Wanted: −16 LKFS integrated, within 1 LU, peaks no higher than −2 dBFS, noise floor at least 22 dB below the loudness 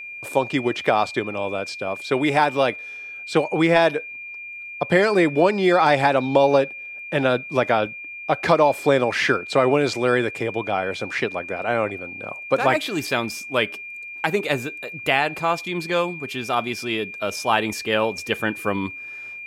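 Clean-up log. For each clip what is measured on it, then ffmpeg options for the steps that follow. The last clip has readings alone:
interfering tone 2,400 Hz; level of the tone −33 dBFS; integrated loudness −21.5 LKFS; sample peak −4.5 dBFS; target loudness −16.0 LKFS
→ -af "bandreject=frequency=2400:width=30"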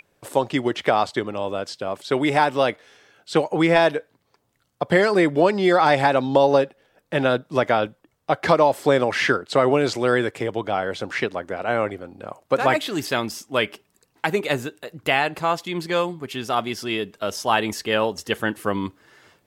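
interfering tone none found; integrated loudness −22.0 LKFS; sample peak −4.5 dBFS; target loudness −16.0 LKFS
→ -af "volume=6dB,alimiter=limit=-2dB:level=0:latency=1"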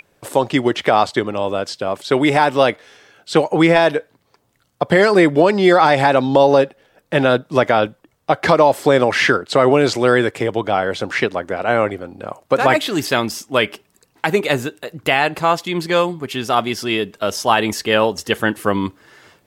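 integrated loudness −16.5 LKFS; sample peak −2.0 dBFS; background noise floor −63 dBFS

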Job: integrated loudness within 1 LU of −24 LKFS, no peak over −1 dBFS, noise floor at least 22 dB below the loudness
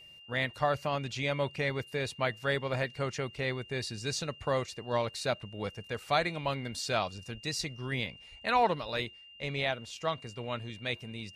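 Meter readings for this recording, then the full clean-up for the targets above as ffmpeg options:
interfering tone 2,800 Hz; level of the tone −51 dBFS; integrated loudness −33.5 LKFS; sample peak −13.0 dBFS; target loudness −24.0 LKFS
→ -af "bandreject=frequency=2800:width=30"
-af "volume=9.5dB"

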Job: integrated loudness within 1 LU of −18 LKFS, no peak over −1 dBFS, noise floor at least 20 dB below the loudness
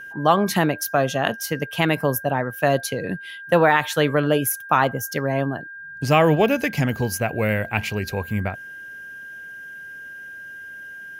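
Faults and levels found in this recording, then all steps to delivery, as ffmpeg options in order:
interfering tone 1,600 Hz; level of the tone −35 dBFS; integrated loudness −21.5 LKFS; sample peak −3.0 dBFS; target loudness −18.0 LKFS
→ -af "bandreject=frequency=1600:width=30"
-af "volume=3.5dB,alimiter=limit=-1dB:level=0:latency=1"

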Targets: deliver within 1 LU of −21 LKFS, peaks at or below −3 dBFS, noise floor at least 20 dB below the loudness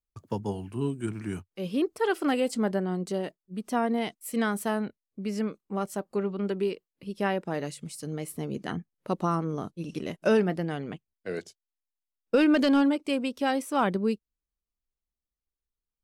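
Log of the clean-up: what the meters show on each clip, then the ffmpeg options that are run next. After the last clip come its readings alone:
integrated loudness −29.5 LKFS; sample peak −13.5 dBFS; target loudness −21.0 LKFS
→ -af "volume=8.5dB"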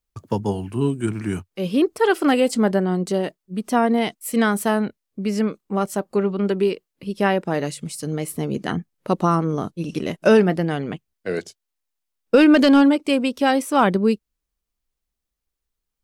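integrated loudness −21.0 LKFS; sample peak −5.0 dBFS; background noise floor −82 dBFS

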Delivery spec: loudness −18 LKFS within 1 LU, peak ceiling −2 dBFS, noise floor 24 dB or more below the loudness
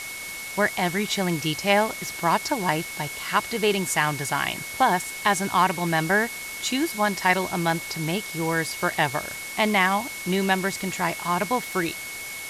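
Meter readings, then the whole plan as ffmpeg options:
interfering tone 2,200 Hz; level of the tone −35 dBFS; background noise floor −35 dBFS; target noise floor −49 dBFS; integrated loudness −24.5 LKFS; sample peak −6.5 dBFS; target loudness −18.0 LKFS
→ -af "bandreject=frequency=2200:width=30"
-af "afftdn=noise_reduction=14:noise_floor=-35"
-af "volume=6.5dB,alimiter=limit=-2dB:level=0:latency=1"

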